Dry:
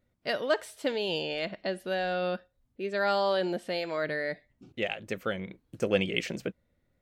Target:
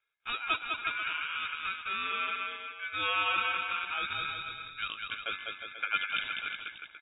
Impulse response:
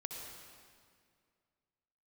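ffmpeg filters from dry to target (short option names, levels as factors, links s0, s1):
-filter_complex "[0:a]highpass=f=200:w=0.5412,highpass=f=200:w=1.3066,lowshelf=f=390:g=-5,asplit=2[s0][s1];[s1]aecho=0:1:200|360|488|590.4|672.3:0.631|0.398|0.251|0.158|0.1[s2];[s0][s2]amix=inputs=2:normalize=0,aeval=exprs='val(0)*sin(2*PI*1900*n/s)':c=same,lowpass=f=3200:t=q:w=0.5098,lowpass=f=3200:t=q:w=0.6013,lowpass=f=3200:t=q:w=0.9,lowpass=f=3200:t=q:w=2.563,afreqshift=-3800"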